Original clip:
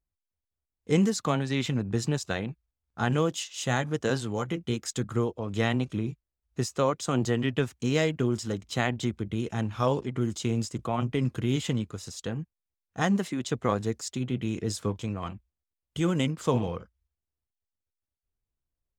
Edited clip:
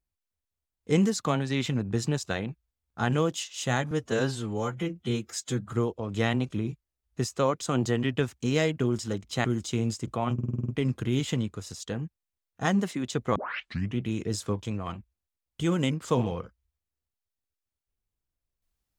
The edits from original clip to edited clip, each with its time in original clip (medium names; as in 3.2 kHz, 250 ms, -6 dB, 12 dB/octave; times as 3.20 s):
3.91–5.12 s: stretch 1.5×
8.84–10.16 s: delete
11.05 s: stutter 0.05 s, 8 plays
13.72 s: tape start 0.63 s